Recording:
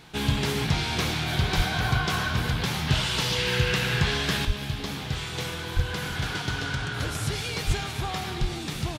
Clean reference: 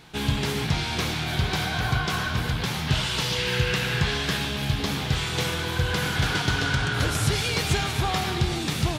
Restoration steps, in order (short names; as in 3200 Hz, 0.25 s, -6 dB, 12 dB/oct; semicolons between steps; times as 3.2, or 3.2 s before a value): de-plosive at 1.56/4.46/5.75/7.66/8.4; inverse comb 0.331 s -20 dB; gain correction +5.5 dB, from 4.45